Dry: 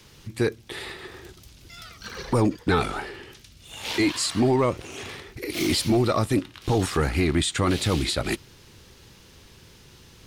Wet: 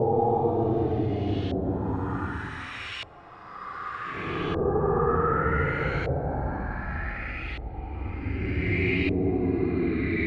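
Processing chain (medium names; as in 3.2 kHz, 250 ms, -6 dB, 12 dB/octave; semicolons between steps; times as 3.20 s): Paulstretch 19×, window 0.05 s, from 6.73 s; LFO low-pass saw up 0.66 Hz 590–3100 Hz; trim -5.5 dB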